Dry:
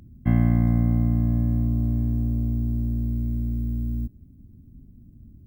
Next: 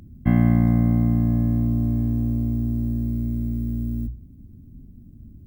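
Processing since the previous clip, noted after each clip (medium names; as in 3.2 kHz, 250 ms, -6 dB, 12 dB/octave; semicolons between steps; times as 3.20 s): hum notches 60/120 Hz; trim +4 dB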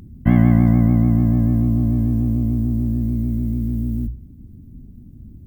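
vibrato 6.8 Hz 79 cents; trim +4 dB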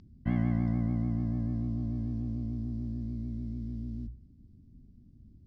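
four-pole ladder low-pass 5.5 kHz, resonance 60%; trim -4.5 dB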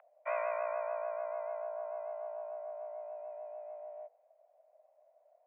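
mistuned SSB +370 Hz 320–2000 Hz; trim +5.5 dB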